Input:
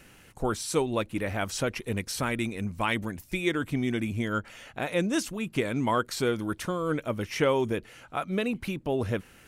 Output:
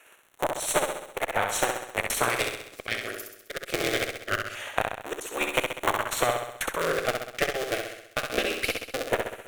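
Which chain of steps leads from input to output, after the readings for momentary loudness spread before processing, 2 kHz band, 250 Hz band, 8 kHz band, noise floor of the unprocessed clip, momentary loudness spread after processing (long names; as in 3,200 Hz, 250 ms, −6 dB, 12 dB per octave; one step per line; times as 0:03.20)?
6 LU, +5.0 dB, −9.0 dB, +6.0 dB, −55 dBFS, 7 LU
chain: sub-harmonics by changed cycles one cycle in 3, inverted
high-pass filter 460 Hz 24 dB per octave
automatic gain control gain up to 11.5 dB
transient designer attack +7 dB, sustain −2 dB
downward compressor 6 to 1, threshold −22 dBFS, peak gain reduction 13.5 dB
gate pattern "xx...x.xxx" 193 BPM −60 dB
surface crackle 52 per second −38 dBFS
harmonic generator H 8 −22 dB, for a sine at −3.5 dBFS
auto-filter notch square 0.22 Hz 940–4,900 Hz
flutter between parallel walls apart 11.2 metres, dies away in 0.77 s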